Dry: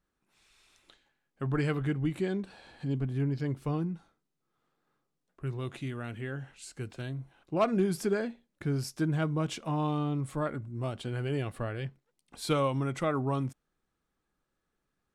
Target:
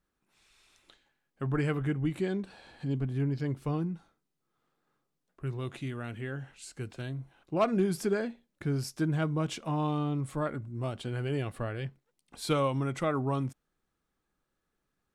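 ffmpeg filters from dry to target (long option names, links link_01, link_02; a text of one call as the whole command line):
ffmpeg -i in.wav -filter_complex "[0:a]asettb=1/sr,asplit=3[link_01][link_02][link_03];[link_01]atrim=end=1.514[link_04];[link_02]atrim=start=1.51:end=2.07,asetpts=PTS-STARTPTS,afade=type=in:duration=0.004:curve=qsin,afade=type=out:start_time=0.556:duration=0.004:curve=qsin,equalizer=frequency=4200:width=2.8:gain=-8.5[link_05];[link_03]atrim=start=2.066[link_06];[link_04][link_05]acrossfade=duration=0.004:curve1=hsin:curve2=qsin[link_07];[link_07][link_06]acrossfade=duration=0.004:curve1=qsin:curve2=hsin" out.wav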